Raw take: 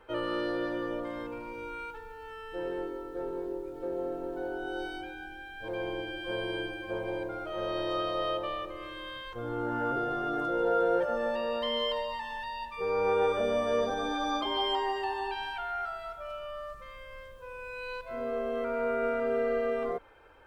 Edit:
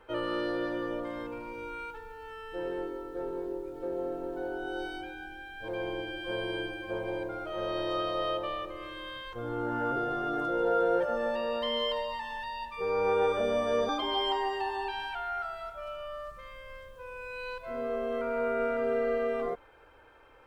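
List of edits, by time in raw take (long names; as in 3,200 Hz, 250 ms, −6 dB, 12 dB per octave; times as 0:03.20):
0:13.89–0:14.32: remove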